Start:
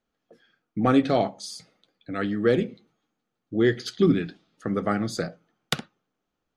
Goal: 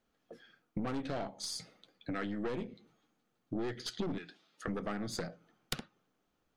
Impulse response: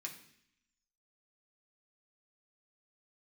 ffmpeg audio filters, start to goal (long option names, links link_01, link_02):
-filter_complex "[0:a]asettb=1/sr,asplit=3[link_01][link_02][link_03];[link_01]atrim=end=4.184[link_04];[link_02]atrim=start=4.18:end=4.68,asetpts=PTS-STARTPTS,afade=type=in:duration=0.004:curve=qsin,afade=type=out:start_time=0.496:duration=0.004:curve=qsin,highpass=frequency=920:poles=1[link_05];[link_03]atrim=start=4.676[link_06];[link_04][link_05]acrossfade=duration=0.004:curve1=hsin:curve2=qsin[link_07];[link_07][link_06]acrossfade=duration=0.004:curve1=qsin:curve2=hsin,aeval=exprs='(tanh(12.6*val(0)+0.55)-tanh(0.55))/12.6':channel_layout=same,acompressor=threshold=-40dB:ratio=5,volume=4.5dB"